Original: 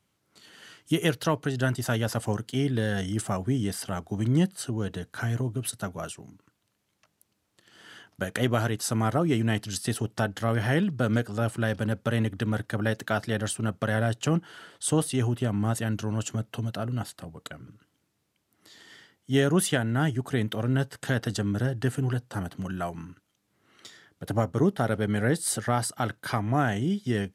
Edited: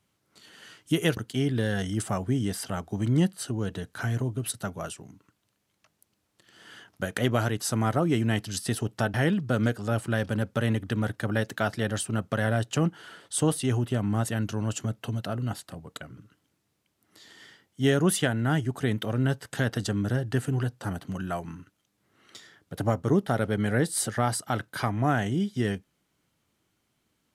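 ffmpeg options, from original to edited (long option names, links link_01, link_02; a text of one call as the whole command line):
ffmpeg -i in.wav -filter_complex "[0:a]asplit=3[link_01][link_02][link_03];[link_01]atrim=end=1.172[link_04];[link_02]atrim=start=2.358:end=10.332[link_05];[link_03]atrim=start=10.638[link_06];[link_04][link_05]acrossfade=duration=0.004:curve1=hsin:curve2=hsin[link_07];[link_07][link_06]acrossfade=duration=0.004:curve1=hsin:curve2=hsin" out.wav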